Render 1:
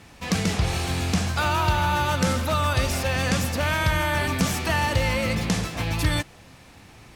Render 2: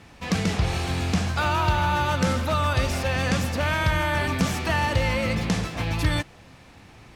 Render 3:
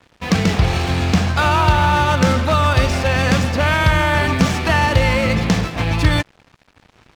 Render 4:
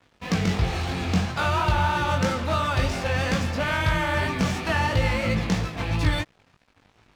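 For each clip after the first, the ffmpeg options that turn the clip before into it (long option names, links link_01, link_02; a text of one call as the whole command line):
ffmpeg -i in.wav -af "highshelf=frequency=6700:gain=-8.5" out.wav
ffmpeg -i in.wav -af "adynamicsmooth=sensitivity=6:basefreq=5000,aeval=exprs='sgn(val(0))*max(abs(val(0))-0.00501,0)':channel_layout=same,volume=8.5dB" out.wav
ffmpeg -i in.wav -af "flanger=delay=17.5:depth=4.4:speed=3,volume=-5dB" out.wav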